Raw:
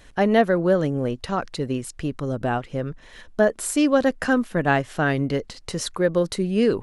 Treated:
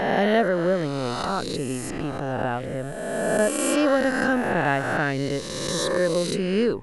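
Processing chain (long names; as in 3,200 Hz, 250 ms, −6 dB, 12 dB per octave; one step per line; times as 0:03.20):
peak hold with a rise ahead of every peak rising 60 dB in 1.97 s
level −4.5 dB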